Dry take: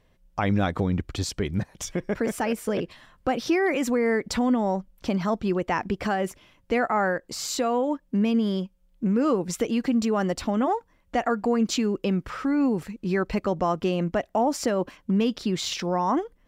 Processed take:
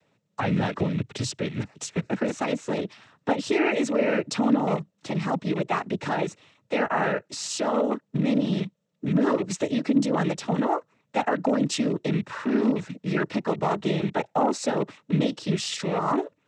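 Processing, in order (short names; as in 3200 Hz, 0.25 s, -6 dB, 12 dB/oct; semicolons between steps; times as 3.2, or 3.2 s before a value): rattling part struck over -33 dBFS, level -28 dBFS; noise vocoder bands 12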